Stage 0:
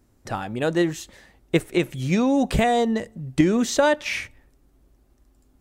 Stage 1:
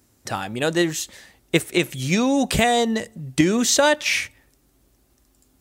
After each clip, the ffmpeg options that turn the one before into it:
-af "highpass=61,highshelf=f=2300:g=11"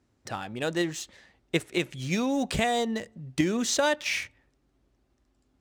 -af "adynamicsmooth=sensitivity=6.5:basefreq=4300,volume=0.422"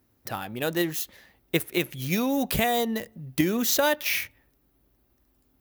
-af "aexciter=amount=14.7:drive=3.9:freq=11000,volume=1.19"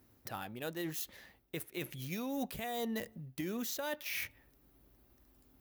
-af "areverse,acompressor=threshold=0.0224:ratio=12,areverse,alimiter=level_in=1.68:limit=0.0631:level=0:latency=1:release=479,volume=0.596,volume=1.12"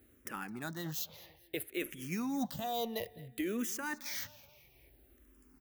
-filter_complex "[0:a]aecho=1:1:214|428|642:0.0891|0.0419|0.0197,asplit=2[s0][s1];[s1]afreqshift=-0.59[s2];[s0][s2]amix=inputs=2:normalize=1,volume=1.68"

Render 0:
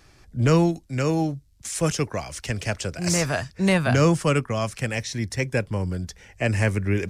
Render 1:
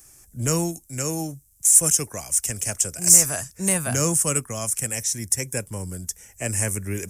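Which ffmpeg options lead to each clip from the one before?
-af "aexciter=amount=15.8:drive=6.3:freq=6400,volume=0.501"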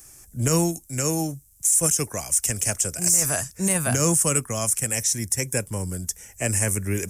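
-af "alimiter=level_in=3.76:limit=0.891:release=50:level=0:latency=1,volume=0.376"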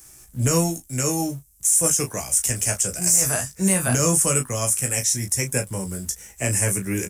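-filter_complex "[0:a]asplit=2[s0][s1];[s1]acrusher=bits=6:mix=0:aa=0.000001,volume=0.316[s2];[s0][s2]amix=inputs=2:normalize=0,aecho=1:1:16|36:0.596|0.335,volume=0.75"

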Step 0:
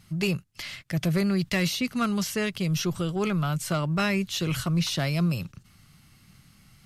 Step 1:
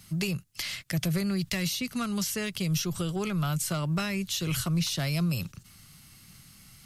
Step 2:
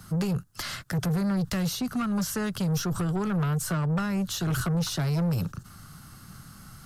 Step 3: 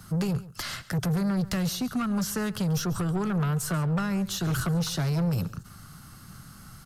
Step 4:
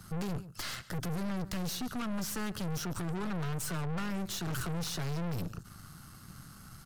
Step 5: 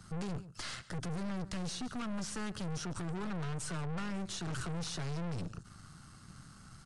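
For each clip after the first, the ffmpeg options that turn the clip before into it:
-filter_complex "[0:a]highshelf=f=4000:g=10.5,acrossover=split=150[s0][s1];[s1]acompressor=threshold=0.0355:ratio=6[s2];[s0][s2]amix=inputs=2:normalize=0"
-filter_complex "[0:a]highshelf=f=1800:t=q:w=3:g=-7,acrossover=split=240[s0][s1];[s1]acompressor=threshold=0.0178:ratio=5[s2];[s0][s2]amix=inputs=2:normalize=0,asoftclip=type=tanh:threshold=0.0266,volume=2.66"
-af "aecho=1:1:138:0.126"
-af "aeval=exprs='(tanh(50.1*val(0)+0.7)-tanh(0.7))/50.1':c=same"
-af "aresample=22050,aresample=44100,volume=0.708"

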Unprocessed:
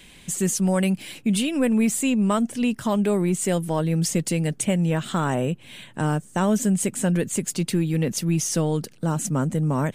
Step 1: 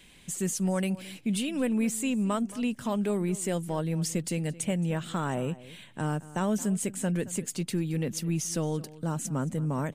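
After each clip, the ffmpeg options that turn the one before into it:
-filter_complex "[0:a]asplit=2[s0][s1];[s1]adelay=221.6,volume=0.126,highshelf=f=4000:g=-4.99[s2];[s0][s2]amix=inputs=2:normalize=0,volume=0.447"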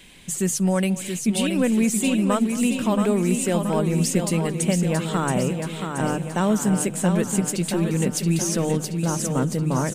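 -af "bandreject=f=50:t=h:w=6,bandreject=f=100:t=h:w=6,bandreject=f=150:t=h:w=6,aecho=1:1:676|1352|2028|2704|3380|4056|4732:0.501|0.276|0.152|0.0834|0.0459|0.0252|0.0139,volume=2.24"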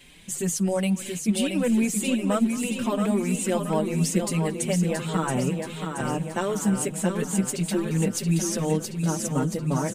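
-filter_complex "[0:a]asplit=2[s0][s1];[s1]adelay=5.3,afreqshift=2.8[s2];[s0][s2]amix=inputs=2:normalize=1"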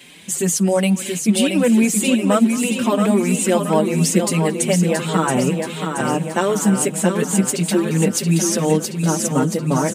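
-af "highpass=160,volume=2.66"

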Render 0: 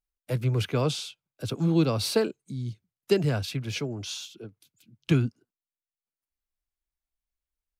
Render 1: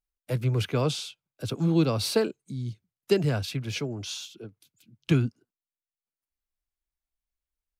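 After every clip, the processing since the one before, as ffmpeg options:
-af anull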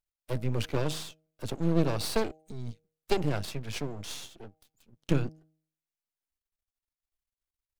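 -af "aeval=exprs='max(val(0),0)':c=same,bandreject=f=157.3:t=h:w=4,bandreject=f=314.6:t=h:w=4,bandreject=f=471.9:t=h:w=4,bandreject=f=629.2:t=h:w=4,bandreject=f=786.5:t=h:w=4"

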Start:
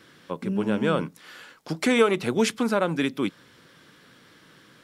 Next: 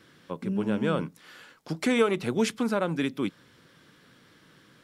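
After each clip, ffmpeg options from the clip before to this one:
-af "lowshelf=f=230:g=4.5,volume=0.596"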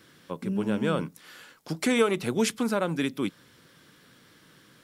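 -af "crystalizer=i=1:c=0"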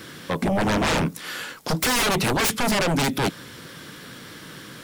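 -af "aeval=exprs='0.282*sin(PI/2*8.91*val(0)/0.282)':c=same,volume=0.447"

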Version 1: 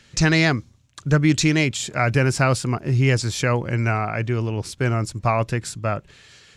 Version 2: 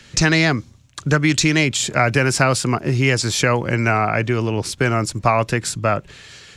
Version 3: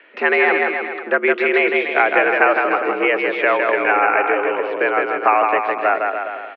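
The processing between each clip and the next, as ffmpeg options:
-filter_complex "[0:a]acrossover=split=170|850[s0][s1][s2];[s0]acompressor=threshold=0.02:ratio=4[s3];[s1]acompressor=threshold=0.0562:ratio=4[s4];[s2]acompressor=threshold=0.0708:ratio=4[s5];[s3][s4][s5]amix=inputs=3:normalize=0,volume=2.37"
-af "aecho=1:1:160|296|411.6|509.9|593.4:0.631|0.398|0.251|0.158|0.1,highpass=f=290:t=q:w=0.5412,highpass=f=290:t=q:w=1.307,lowpass=f=2500:t=q:w=0.5176,lowpass=f=2500:t=q:w=0.7071,lowpass=f=2500:t=q:w=1.932,afreqshift=74,volume=1.26"

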